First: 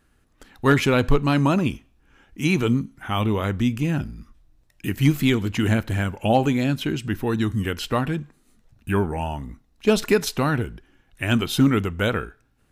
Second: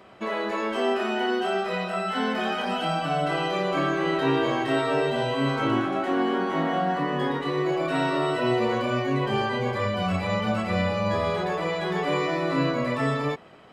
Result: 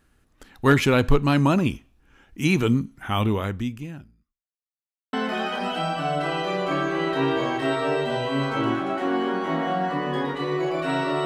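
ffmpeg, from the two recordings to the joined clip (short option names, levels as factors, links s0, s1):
-filter_complex "[0:a]apad=whole_dur=11.25,atrim=end=11.25,asplit=2[s0][s1];[s0]atrim=end=4.46,asetpts=PTS-STARTPTS,afade=t=out:st=3.27:d=1.19:c=qua[s2];[s1]atrim=start=4.46:end=5.13,asetpts=PTS-STARTPTS,volume=0[s3];[1:a]atrim=start=2.19:end=8.31,asetpts=PTS-STARTPTS,afade=t=in:d=0.004:c=hsin[s4];[s2][s3][s4]concat=n=3:v=0:a=1"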